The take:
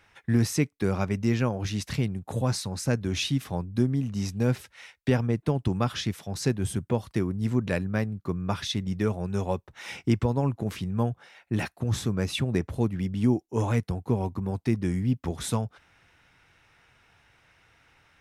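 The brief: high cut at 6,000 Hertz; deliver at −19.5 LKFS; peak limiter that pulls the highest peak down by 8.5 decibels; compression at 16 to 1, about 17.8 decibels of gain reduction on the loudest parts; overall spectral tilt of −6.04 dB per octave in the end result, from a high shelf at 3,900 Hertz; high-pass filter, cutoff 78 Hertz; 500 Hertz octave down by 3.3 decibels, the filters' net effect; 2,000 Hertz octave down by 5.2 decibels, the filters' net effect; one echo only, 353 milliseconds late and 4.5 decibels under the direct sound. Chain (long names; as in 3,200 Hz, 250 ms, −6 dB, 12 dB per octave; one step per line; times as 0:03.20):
high-pass filter 78 Hz
low-pass filter 6,000 Hz
parametric band 500 Hz −4 dB
parametric band 2,000 Hz −4.5 dB
high-shelf EQ 3,900 Hz −7.5 dB
downward compressor 16 to 1, threshold −37 dBFS
brickwall limiter −33.5 dBFS
single-tap delay 353 ms −4.5 dB
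level +23.5 dB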